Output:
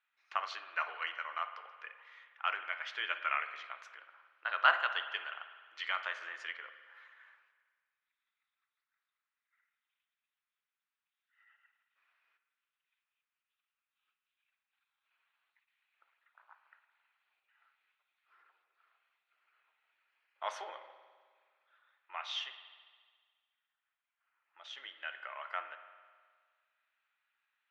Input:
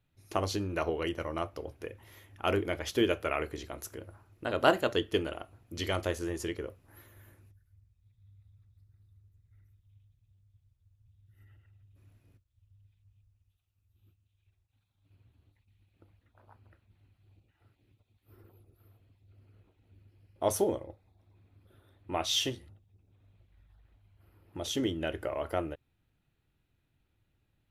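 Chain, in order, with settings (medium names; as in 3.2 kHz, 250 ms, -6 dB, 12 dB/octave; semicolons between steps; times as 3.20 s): high-pass 1.3 kHz 24 dB/octave; treble shelf 5.2 kHz -9.5 dB; gain riding 2 s; tape spacing loss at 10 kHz 38 dB; spring tank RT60 1.7 s, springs 52 ms, chirp 40 ms, DRR 9.5 dB; trim +7.5 dB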